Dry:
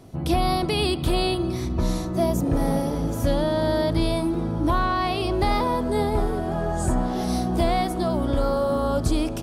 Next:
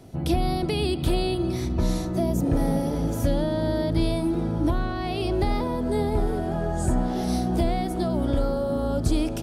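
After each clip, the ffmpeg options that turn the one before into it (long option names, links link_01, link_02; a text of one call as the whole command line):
ffmpeg -i in.wav -filter_complex "[0:a]acrossover=split=450[link_01][link_02];[link_02]acompressor=threshold=-30dB:ratio=4[link_03];[link_01][link_03]amix=inputs=2:normalize=0,equalizer=frequency=1100:width=6.1:gain=-7" out.wav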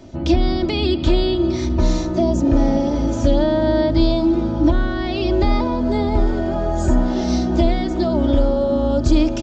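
ffmpeg -i in.wav -af "aresample=16000,aresample=44100,aecho=1:1:3.3:0.62,volume=5dB" out.wav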